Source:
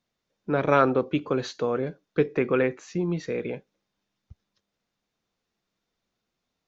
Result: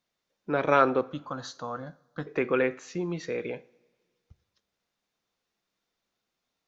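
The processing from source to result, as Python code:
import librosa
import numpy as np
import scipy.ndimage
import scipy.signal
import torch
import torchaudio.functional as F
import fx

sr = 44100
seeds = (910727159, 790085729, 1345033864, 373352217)

y = fx.low_shelf(x, sr, hz=300.0, db=-8.0)
y = fx.fixed_phaser(y, sr, hz=990.0, stages=4, at=(1.01, 2.27))
y = fx.rev_double_slope(y, sr, seeds[0], early_s=0.56, late_s=1.9, knee_db=-16, drr_db=16.5)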